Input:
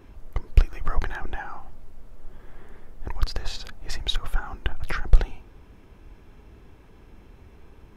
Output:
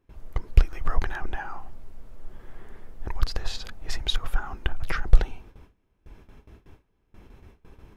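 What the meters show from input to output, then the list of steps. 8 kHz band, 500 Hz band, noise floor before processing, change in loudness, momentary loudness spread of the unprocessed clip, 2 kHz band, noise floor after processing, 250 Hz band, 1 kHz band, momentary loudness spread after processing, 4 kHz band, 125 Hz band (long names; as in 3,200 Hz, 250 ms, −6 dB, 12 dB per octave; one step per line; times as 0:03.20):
can't be measured, 0.0 dB, −51 dBFS, 0.0 dB, 24 LU, 0.0 dB, −69 dBFS, 0.0 dB, 0.0 dB, 24 LU, 0.0 dB, 0.0 dB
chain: noise gate with hold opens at −38 dBFS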